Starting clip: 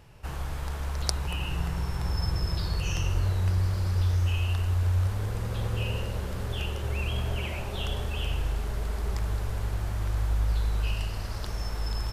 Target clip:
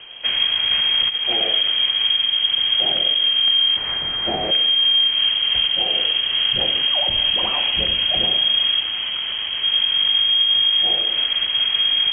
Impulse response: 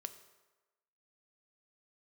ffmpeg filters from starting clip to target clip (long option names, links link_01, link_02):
-filter_complex "[0:a]asplit=3[link_01][link_02][link_03];[link_01]afade=type=out:start_time=0.7:duration=0.02[link_04];[link_02]acontrast=34,afade=type=in:start_time=0.7:duration=0.02,afade=type=out:start_time=1.16:duration=0.02[link_05];[link_03]afade=type=in:start_time=1.16:duration=0.02[link_06];[link_04][link_05][link_06]amix=inputs=3:normalize=0,acrusher=bits=6:mode=log:mix=0:aa=0.000001,asettb=1/sr,asplit=3[link_07][link_08][link_09];[link_07]atrim=end=3.764[link_10];[link_08]atrim=start=3.76:end=4.51,asetpts=PTS-STARTPTS,afade=type=in:duration=0.004:curve=qsin,afade=type=out:start_time=0.746:duration=0.004:curve=qsin,tiltshelf=frequency=1300:gain=-10[link_11];[link_09]atrim=start=4.506[link_12];[link_10][link_11]acrossfade=duration=0.004:curve1=hsin:curve2=qsin[link_13];[link_13][link_12]acrossfade=duration=0.004:curve1=qsin:curve2=hsin,alimiter=level_in=0.5dB:limit=-24dB:level=0:latency=1:release=302,volume=-0.5dB,asettb=1/sr,asplit=3[link_14][link_15][link_16];[link_14]atrim=end=8.794[link_17];[link_15]atrim=start=8.79:end=9.62,asetpts=PTS-STARTPTS,afade=type=in:duration=0.004:curve=qsin,afade=type=out:start_time=0.826:duration=0.004:curve=qsin,aeval=exprs='0.02*(abs(mod(val(0)/0.02+3,4)-2)-1)':channel_layout=same[link_18];[link_16]atrim=start=9.616[link_19];[link_17][link_18]acrossfade=duration=0.004:curve1=hsin:curve2=qsin[link_20];[link_20][link_19]acrossfade=duration=0.004:curve1=qsin:curve2=hsin,lowpass=frequency=2800:width_type=q:width=0.5098,lowpass=frequency=2800:width_type=q:width=0.6013,lowpass=frequency=2800:width_type=q:width=0.9,lowpass=frequency=2800:width_type=q:width=2.563,afreqshift=-3300,lowshelf=frequency=240:gain=11,acontrast=62,volume=7.5dB"